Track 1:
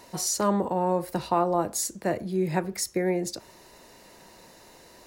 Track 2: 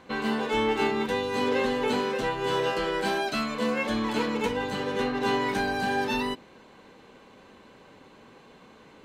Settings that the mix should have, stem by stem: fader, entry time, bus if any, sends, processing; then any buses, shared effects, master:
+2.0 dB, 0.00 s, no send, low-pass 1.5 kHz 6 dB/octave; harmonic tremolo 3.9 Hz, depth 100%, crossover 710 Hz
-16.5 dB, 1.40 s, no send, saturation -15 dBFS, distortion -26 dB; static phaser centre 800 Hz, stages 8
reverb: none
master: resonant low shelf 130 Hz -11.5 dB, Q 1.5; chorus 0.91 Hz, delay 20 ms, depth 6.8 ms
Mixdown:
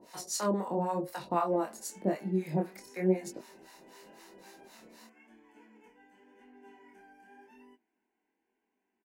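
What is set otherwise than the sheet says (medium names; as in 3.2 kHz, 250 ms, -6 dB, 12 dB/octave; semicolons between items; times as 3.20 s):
stem 1: missing low-pass 1.5 kHz 6 dB/octave; stem 2 -16.5 dB -> -25.5 dB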